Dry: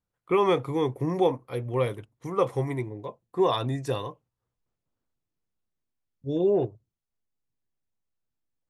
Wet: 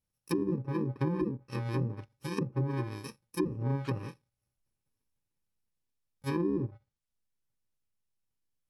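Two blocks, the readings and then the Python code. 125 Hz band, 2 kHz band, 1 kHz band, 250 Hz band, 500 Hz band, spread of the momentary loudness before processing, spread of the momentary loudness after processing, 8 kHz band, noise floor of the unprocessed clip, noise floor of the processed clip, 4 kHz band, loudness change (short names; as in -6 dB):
-0.5 dB, -5.0 dB, -12.5 dB, -2.5 dB, -12.0 dB, 12 LU, 9 LU, -1.0 dB, under -85 dBFS, under -85 dBFS, -12.0 dB, -7.0 dB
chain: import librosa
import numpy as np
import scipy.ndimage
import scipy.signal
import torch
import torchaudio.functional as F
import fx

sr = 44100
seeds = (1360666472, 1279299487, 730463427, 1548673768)

y = fx.bit_reversed(x, sr, seeds[0], block=64)
y = fx.env_lowpass_down(y, sr, base_hz=360.0, full_db=-21.0)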